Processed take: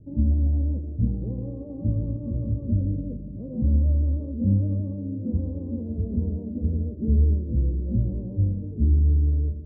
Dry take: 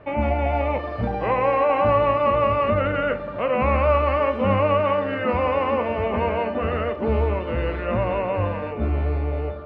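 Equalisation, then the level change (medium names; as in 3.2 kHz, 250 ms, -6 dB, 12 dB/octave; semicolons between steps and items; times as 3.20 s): inverse Chebyshev low-pass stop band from 1.8 kHz, stop band 80 dB; bass shelf 220 Hz +8 dB; -2.5 dB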